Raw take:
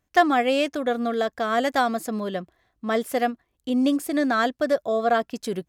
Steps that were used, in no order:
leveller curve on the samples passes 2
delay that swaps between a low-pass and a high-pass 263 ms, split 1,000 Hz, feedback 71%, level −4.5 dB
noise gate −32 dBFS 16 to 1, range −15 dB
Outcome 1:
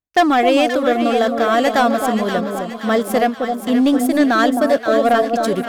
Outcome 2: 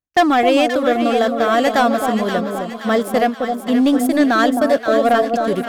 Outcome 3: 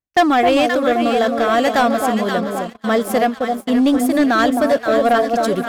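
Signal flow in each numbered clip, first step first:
leveller curve on the samples, then delay that swaps between a low-pass and a high-pass, then noise gate
noise gate, then leveller curve on the samples, then delay that swaps between a low-pass and a high-pass
delay that swaps between a low-pass and a high-pass, then noise gate, then leveller curve on the samples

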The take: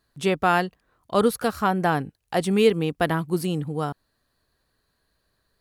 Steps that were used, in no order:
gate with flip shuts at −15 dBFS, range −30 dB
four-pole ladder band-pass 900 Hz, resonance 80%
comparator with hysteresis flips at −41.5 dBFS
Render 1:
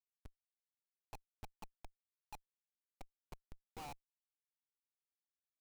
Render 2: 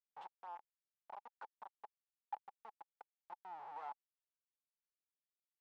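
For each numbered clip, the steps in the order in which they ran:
gate with flip, then four-pole ladder band-pass, then comparator with hysteresis
gate with flip, then comparator with hysteresis, then four-pole ladder band-pass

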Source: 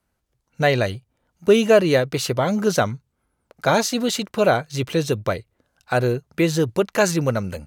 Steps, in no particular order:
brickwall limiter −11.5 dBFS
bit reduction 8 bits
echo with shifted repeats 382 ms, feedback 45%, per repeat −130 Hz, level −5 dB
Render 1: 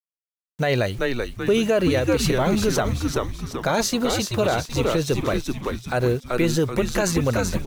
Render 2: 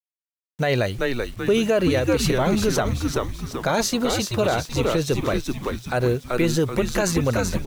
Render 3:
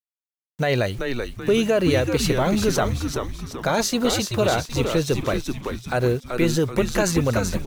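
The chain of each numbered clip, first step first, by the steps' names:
bit reduction, then echo with shifted repeats, then brickwall limiter
echo with shifted repeats, then bit reduction, then brickwall limiter
bit reduction, then brickwall limiter, then echo with shifted repeats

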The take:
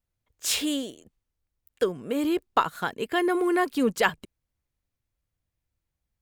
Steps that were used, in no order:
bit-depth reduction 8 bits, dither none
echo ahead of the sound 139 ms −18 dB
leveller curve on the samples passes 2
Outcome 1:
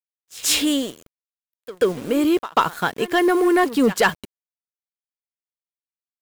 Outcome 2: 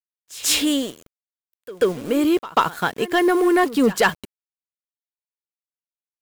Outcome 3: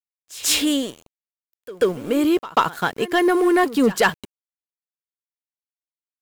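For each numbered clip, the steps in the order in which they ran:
bit-depth reduction, then echo ahead of the sound, then leveller curve on the samples
bit-depth reduction, then leveller curve on the samples, then echo ahead of the sound
leveller curve on the samples, then bit-depth reduction, then echo ahead of the sound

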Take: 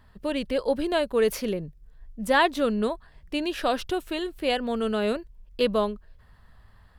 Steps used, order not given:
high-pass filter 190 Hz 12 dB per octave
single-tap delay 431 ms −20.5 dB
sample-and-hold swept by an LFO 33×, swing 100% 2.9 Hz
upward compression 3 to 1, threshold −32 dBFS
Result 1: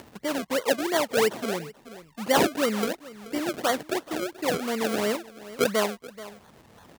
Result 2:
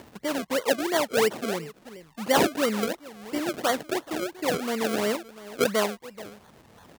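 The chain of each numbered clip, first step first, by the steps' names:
sample-and-hold swept by an LFO, then single-tap delay, then upward compression, then high-pass filter
single-tap delay, then upward compression, then sample-and-hold swept by an LFO, then high-pass filter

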